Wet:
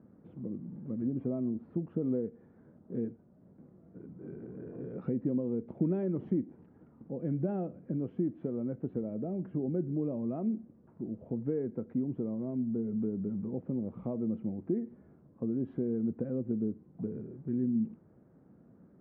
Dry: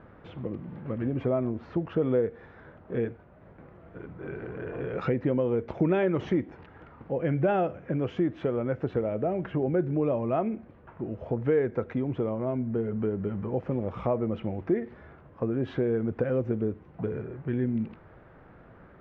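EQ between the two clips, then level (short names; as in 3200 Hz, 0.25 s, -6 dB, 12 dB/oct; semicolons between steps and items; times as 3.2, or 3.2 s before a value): band-pass 220 Hz, Q 2; 0.0 dB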